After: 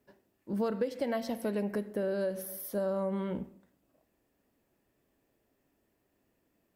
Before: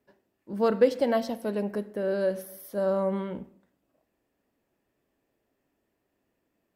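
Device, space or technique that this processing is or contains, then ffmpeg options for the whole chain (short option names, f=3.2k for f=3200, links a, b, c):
ASMR close-microphone chain: -filter_complex "[0:a]lowshelf=f=230:g=4,acompressor=threshold=-29dB:ratio=6,highshelf=f=6.7k:g=5.5,asettb=1/sr,asplit=3[a][b][c];[a]atrim=end=0.884[d];[b]atrim=start=0.88:end=1.89,asetpts=PTS-STARTPTS,afade=t=in:d=0.004:c=qsin,afade=t=out:st=1.006:d=0.004:c=qsin,equalizer=f=2.1k:t=o:w=0.54:g=5.5[e];[c]atrim=start=1.886[f];[d][e]acrossfade=d=0.004:c1=hsin:c2=qsin[g];[g][f]acrossfade=d=0.004:c1=qsin:c2=hsin"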